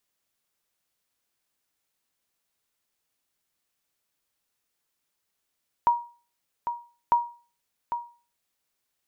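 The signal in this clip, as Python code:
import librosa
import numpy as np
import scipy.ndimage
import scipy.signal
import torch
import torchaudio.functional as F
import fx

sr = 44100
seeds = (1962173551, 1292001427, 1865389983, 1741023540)

y = fx.sonar_ping(sr, hz=951.0, decay_s=0.37, every_s=1.25, pings=2, echo_s=0.8, echo_db=-9.0, level_db=-13.0)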